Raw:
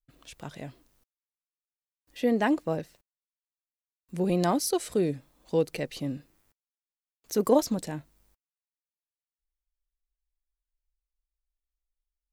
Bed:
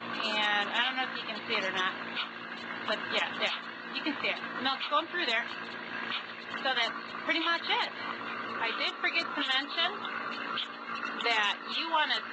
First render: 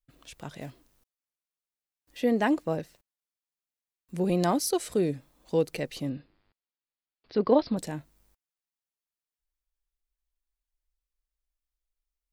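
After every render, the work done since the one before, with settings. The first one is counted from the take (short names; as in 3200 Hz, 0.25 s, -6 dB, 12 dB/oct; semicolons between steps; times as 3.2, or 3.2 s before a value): 0.61–2.2 block floating point 5-bit; 6.09–7.77 steep low-pass 4900 Hz 96 dB/oct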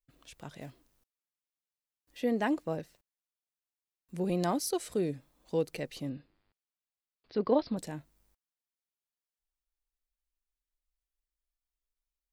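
gain -5 dB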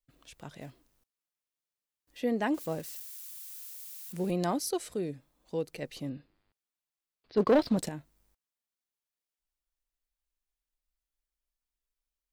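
2.54–4.31 switching spikes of -38 dBFS; 4.89–5.82 gain -3 dB; 7.37–7.89 sample leveller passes 2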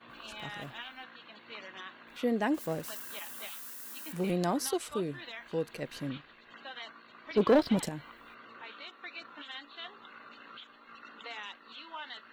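add bed -15 dB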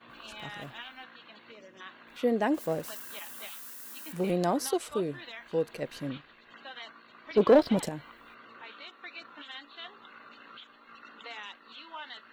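1.52–1.81 spectral gain 650–4800 Hz -11 dB; dynamic EQ 560 Hz, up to +5 dB, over -43 dBFS, Q 1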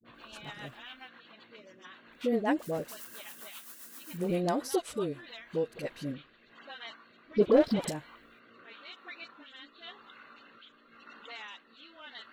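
dispersion highs, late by 49 ms, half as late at 610 Hz; rotary speaker horn 7.5 Hz, later 0.9 Hz, at 5.05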